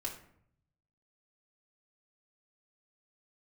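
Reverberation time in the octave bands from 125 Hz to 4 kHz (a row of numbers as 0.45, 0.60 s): 1.3, 0.85, 0.70, 0.60, 0.55, 0.40 s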